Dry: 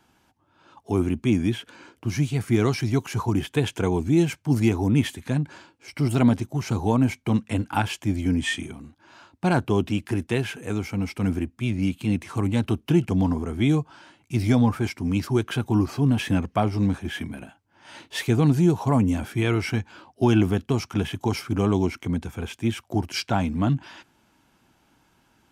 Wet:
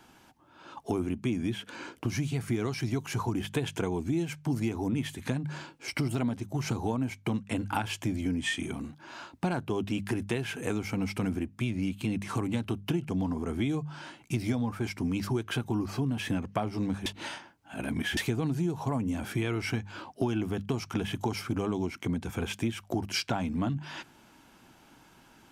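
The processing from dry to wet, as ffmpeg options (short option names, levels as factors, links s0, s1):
-filter_complex "[0:a]asplit=3[s0][s1][s2];[s0]atrim=end=17.062[s3];[s1]atrim=start=17.058:end=18.172,asetpts=PTS-STARTPTS,areverse[s4];[s2]atrim=start=18.168[s5];[s3][s4]acrossfade=d=0.004:c1=hsin:c2=hsin[s6];[s6][s5]acrossfade=d=0.004:c1=hsin:c2=hsin,bandreject=f=50:t=h:w=6,bandreject=f=100:t=h:w=6,bandreject=f=150:t=h:w=6,bandreject=f=200:t=h:w=6,acompressor=threshold=0.0224:ratio=6,equalizer=f=76:w=2:g=-4.5,volume=1.88"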